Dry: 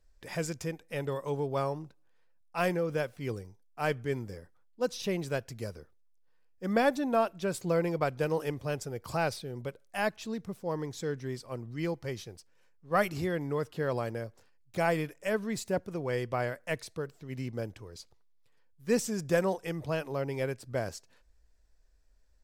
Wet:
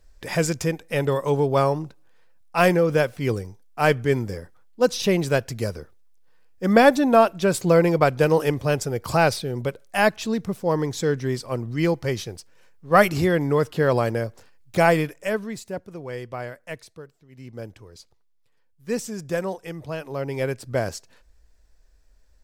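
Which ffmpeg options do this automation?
-af "volume=35.5,afade=t=out:st=14.78:d=0.82:silence=0.237137,afade=t=out:st=16.67:d=0.64:silence=0.316228,afade=t=in:st=17.31:d=0.34:silence=0.251189,afade=t=in:st=19.98:d=0.63:silence=0.421697"

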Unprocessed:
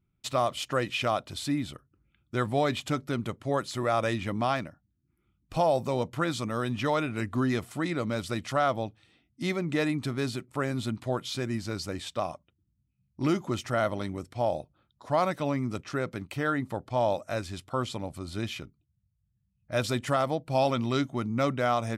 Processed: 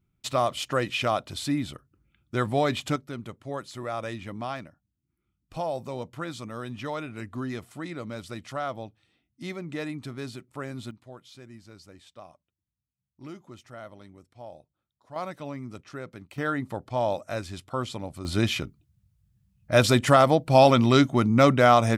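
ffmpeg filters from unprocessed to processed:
-af "asetnsamples=n=441:p=0,asendcmd='2.96 volume volume -6dB;10.91 volume volume -15.5dB;15.16 volume volume -7.5dB;16.38 volume volume 0dB;18.25 volume volume 9dB',volume=1.26"

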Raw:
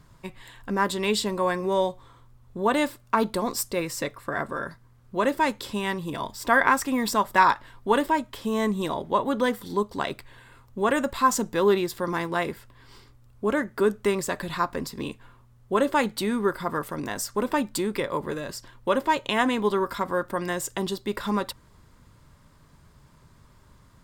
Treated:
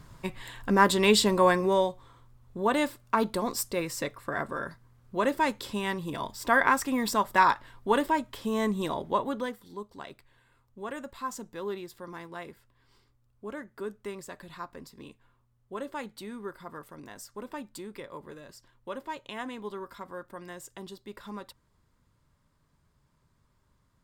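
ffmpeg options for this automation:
-af "volume=1.5,afade=t=out:st=1.47:d=0.41:silence=0.473151,afade=t=out:st=9.1:d=0.48:silence=0.266073"

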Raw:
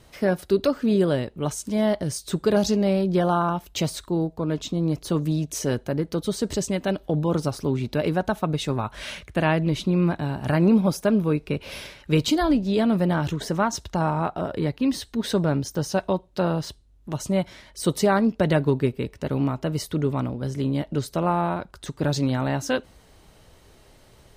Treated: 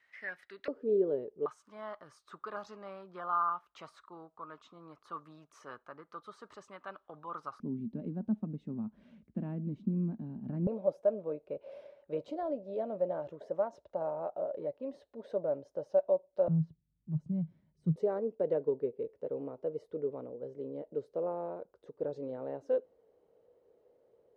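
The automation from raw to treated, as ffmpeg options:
-af "asetnsamples=n=441:p=0,asendcmd='0.68 bandpass f 430;1.46 bandpass f 1200;7.6 bandpass f 220;10.67 bandpass f 570;16.48 bandpass f 160;17.96 bandpass f 480',bandpass=f=1900:t=q:w=7.6:csg=0"

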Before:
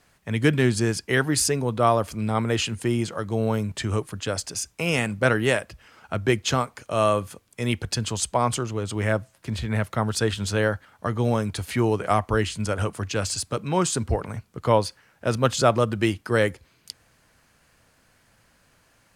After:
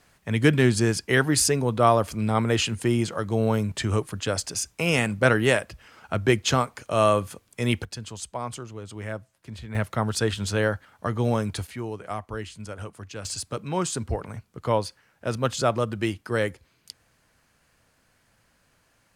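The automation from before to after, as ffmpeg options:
-af "asetnsamples=n=441:p=0,asendcmd='7.84 volume volume -10dB;9.75 volume volume -1dB;11.67 volume volume -11dB;13.25 volume volume -4dB',volume=1.12"

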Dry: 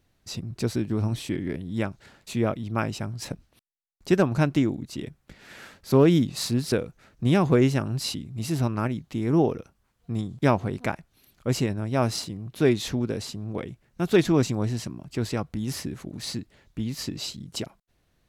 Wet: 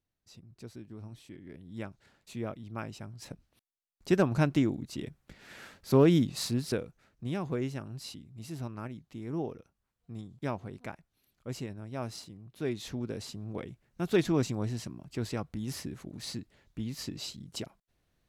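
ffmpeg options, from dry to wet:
-af "volume=1.41,afade=t=in:st=1.42:d=0.4:silence=0.421697,afade=t=in:st=3.16:d=1.13:silence=0.398107,afade=t=out:st=6.28:d=0.99:silence=0.334965,afade=t=in:st=12.62:d=0.74:silence=0.446684"

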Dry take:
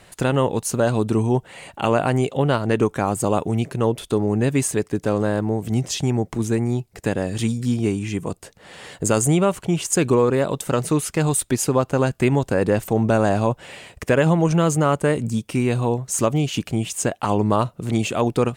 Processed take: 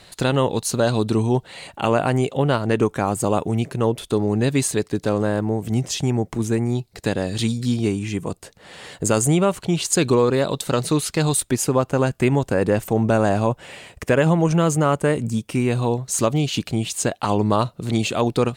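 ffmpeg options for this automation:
-af "asetnsamples=n=441:p=0,asendcmd='1.67 equalizer g 2;4.14 equalizer g 10;5.09 equalizer g 0.5;6.75 equalizer g 11;7.88 equalizer g 3;9.61 equalizer g 11.5;11.4 equalizer g 0;15.77 equalizer g 8.5',equalizer=f=4100:t=o:w=0.49:g=11.5"

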